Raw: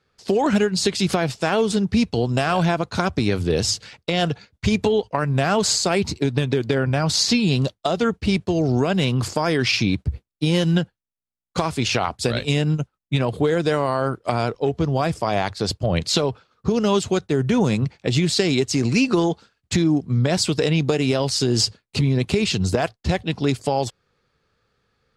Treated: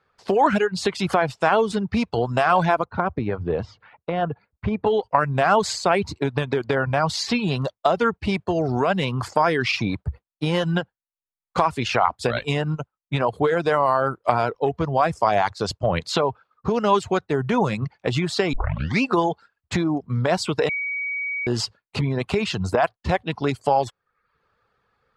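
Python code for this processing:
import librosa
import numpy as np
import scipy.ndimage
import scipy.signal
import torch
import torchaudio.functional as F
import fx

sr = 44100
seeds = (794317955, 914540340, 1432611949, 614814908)

y = fx.spacing_loss(x, sr, db_at_10k=42, at=(2.84, 4.86), fade=0.02)
y = fx.peak_eq(y, sr, hz=6500.0, db=6.0, octaves=0.77, at=(15.13, 15.87))
y = fx.edit(y, sr, fx.tape_start(start_s=18.53, length_s=0.49),
    fx.bleep(start_s=20.69, length_s=0.78, hz=2260.0, db=-22.5), tone=tone)
y = fx.dereverb_blind(y, sr, rt60_s=0.55)
y = fx.curve_eq(y, sr, hz=(310.0, 990.0, 5800.0), db=(0, 11, -5))
y = y * librosa.db_to_amplitude(-3.5)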